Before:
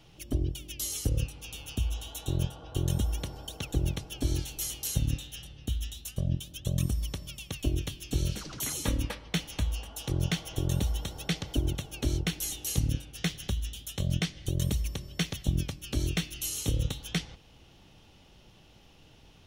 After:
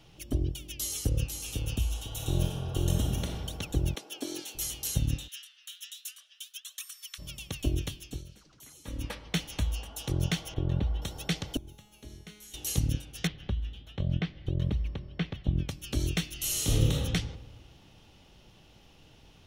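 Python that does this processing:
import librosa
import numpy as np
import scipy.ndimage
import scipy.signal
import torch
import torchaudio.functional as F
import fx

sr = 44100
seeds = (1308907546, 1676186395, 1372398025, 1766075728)

y = fx.echo_throw(x, sr, start_s=0.76, length_s=0.59, ms=500, feedback_pct=35, wet_db=-5.5)
y = fx.reverb_throw(y, sr, start_s=2.07, length_s=1.2, rt60_s=1.5, drr_db=0.0)
y = fx.highpass(y, sr, hz=270.0, slope=24, at=(3.95, 4.55))
y = fx.steep_highpass(y, sr, hz=1300.0, slope=36, at=(5.27, 7.18), fade=0.02)
y = fx.air_absorb(y, sr, metres=360.0, at=(10.54, 11.02))
y = fx.comb_fb(y, sr, f0_hz=210.0, decay_s=1.1, harmonics='all', damping=0.0, mix_pct=90, at=(11.57, 12.54))
y = fx.air_absorb(y, sr, metres=360.0, at=(13.27, 15.69))
y = fx.reverb_throw(y, sr, start_s=16.36, length_s=0.56, rt60_s=1.3, drr_db=-4.5)
y = fx.edit(y, sr, fx.fade_down_up(start_s=7.9, length_s=1.28, db=-18.5, fade_s=0.34), tone=tone)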